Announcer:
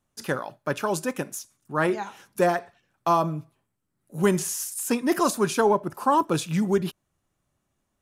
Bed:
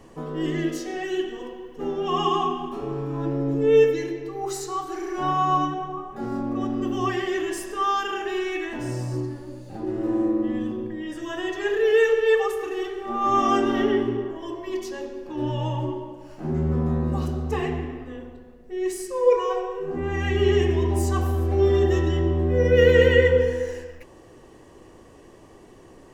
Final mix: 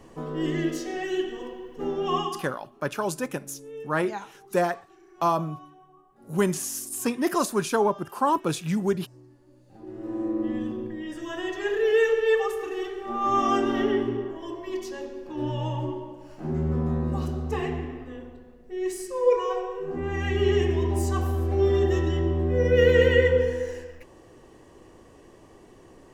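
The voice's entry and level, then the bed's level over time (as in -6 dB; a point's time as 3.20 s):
2.15 s, -2.0 dB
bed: 2.16 s -1 dB
2.53 s -23.5 dB
9.21 s -23.5 dB
10.46 s -2.5 dB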